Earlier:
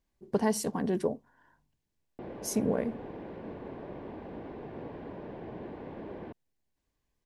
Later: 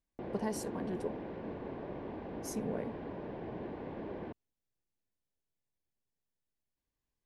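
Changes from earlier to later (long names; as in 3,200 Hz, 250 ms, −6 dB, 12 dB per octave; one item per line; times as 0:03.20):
speech −9.0 dB
background: entry −2.00 s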